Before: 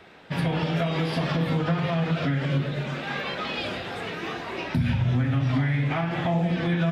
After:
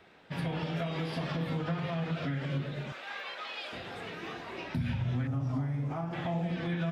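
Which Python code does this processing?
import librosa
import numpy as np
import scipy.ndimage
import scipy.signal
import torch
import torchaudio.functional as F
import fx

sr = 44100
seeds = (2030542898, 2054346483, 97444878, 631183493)

y = fx.highpass(x, sr, hz=660.0, slope=12, at=(2.92, 3.73))
y = fx.band_shelf(y, sr, hz=2600.0, db=-13.5, octaves=1.7, at=(5.27, 6.13))
y = F.gain(torch.from_numpy(y), -8.5).numpy()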